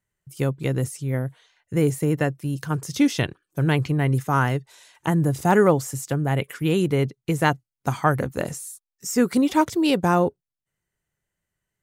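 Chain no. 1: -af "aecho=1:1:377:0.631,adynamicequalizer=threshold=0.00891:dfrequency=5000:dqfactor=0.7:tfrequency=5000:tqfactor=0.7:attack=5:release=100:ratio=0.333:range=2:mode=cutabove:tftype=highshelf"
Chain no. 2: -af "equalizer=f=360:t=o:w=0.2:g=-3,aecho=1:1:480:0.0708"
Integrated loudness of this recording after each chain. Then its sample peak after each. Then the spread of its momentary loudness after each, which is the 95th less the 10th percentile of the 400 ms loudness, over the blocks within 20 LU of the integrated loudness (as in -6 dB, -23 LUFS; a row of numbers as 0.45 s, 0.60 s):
-22.0 LUFS, -23.5 LUFS; -4.5 dBFS, -5.5 dBFS; 8 LU, 10 LU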